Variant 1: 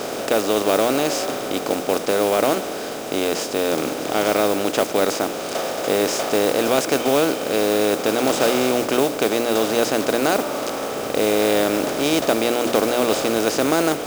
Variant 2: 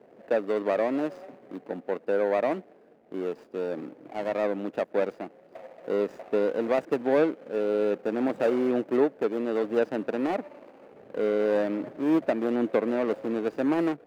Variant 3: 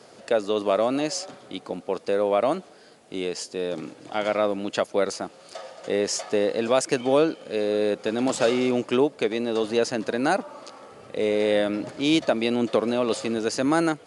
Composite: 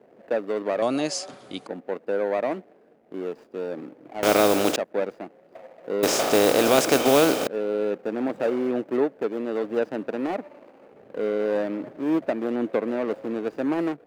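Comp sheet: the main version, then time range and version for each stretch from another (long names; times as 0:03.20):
2
0:00.82–0:01.67: punch in from 3
0:04.23–0:04.76: punch in from 1
0:06.03–0:07.47: punch in from 1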